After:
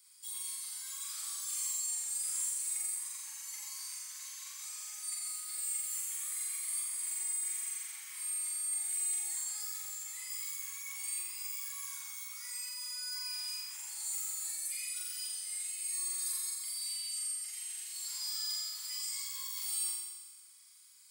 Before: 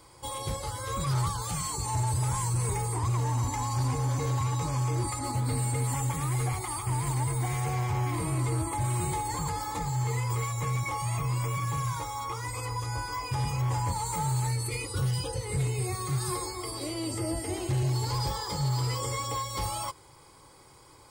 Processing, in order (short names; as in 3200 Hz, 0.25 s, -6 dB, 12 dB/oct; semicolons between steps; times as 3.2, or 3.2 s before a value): HPF 1400 Hz 24 dB/oct; differentiator; flutter echo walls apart 7.5 m, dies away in 1.3 s; gain -3.5 dB